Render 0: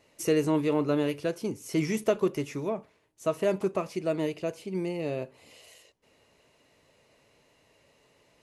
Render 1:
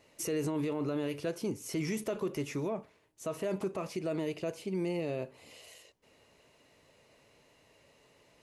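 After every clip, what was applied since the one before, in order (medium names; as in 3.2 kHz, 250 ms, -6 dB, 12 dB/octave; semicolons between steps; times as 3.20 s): peak limiter -25.5 dBFS, peak gain reduction 12 dB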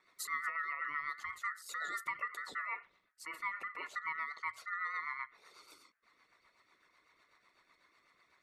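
resonances exaggerated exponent 1.5; ring modulator 1.6 kHz; rotary cabinet horn 8 Hz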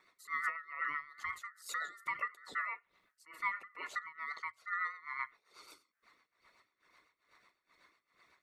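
tremolo 2.3 Hz, depth 91%; trim +3.5 dB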